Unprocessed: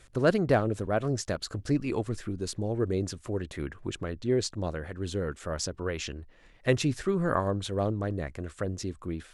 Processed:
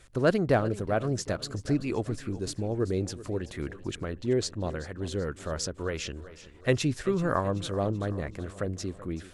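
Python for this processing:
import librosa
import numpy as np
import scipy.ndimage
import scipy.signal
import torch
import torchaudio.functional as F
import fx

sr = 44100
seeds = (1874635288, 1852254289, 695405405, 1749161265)

y = fx.echo_feedback(x, sr, ms=382, feedback_pct=50, wet_db=-16.5)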